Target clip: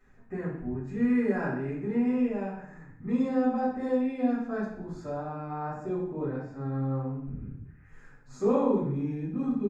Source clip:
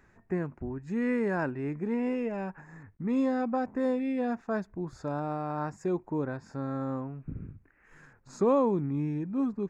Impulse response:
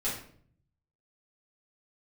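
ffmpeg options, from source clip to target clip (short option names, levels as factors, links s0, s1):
-filter_complex "[0:a]asettb=1/sr,asplit=3[s0][s1][s2];[s0]atrim=end=5.094[s3];[s1]atrim=start=5.09:end=7.4,asetpts=PTS-STARTPTS,afade=t=in:d=0.004:c=qsin,afade=t=out:st=2.306:d=0.004:c=qsin,highshelf=f=4300:g=-11.5[s4];[s2]atrim=start=7.396[s5];[s3][s4]acrossfade=d=0.004:c1=hsin:c2=qsin[s6];[s6][s5]acrossfade=d=0.004:c1=qsin:c2=hsin,aecho=1:1:60|120|180|240|300|360:0.251|0.138|0.076|0.0418|0.023|0.0126[s7];[1:a]atrim=start_sample=2205,asetrate=42336,aresample=44100[s8];[s7][s8]afir=irnorm=-1:irlink=0,volume=0.422"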